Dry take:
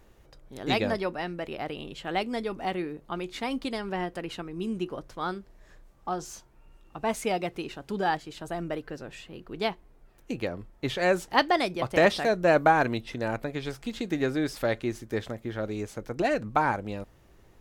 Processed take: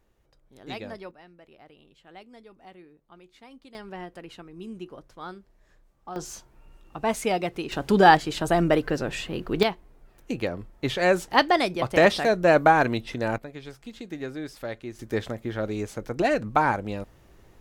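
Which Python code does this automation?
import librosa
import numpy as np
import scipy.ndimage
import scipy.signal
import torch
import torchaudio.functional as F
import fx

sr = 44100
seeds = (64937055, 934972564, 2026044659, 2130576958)

y = fx.gain(x, sr, db=fx.steps((0.0, -10.5), (1.11, -18.0), (3.75, -7.0), (6.16, 3.0), (7.72, 12.0), (9.63, 3.0), (13.38, -7.0), (14.99, 3.0)))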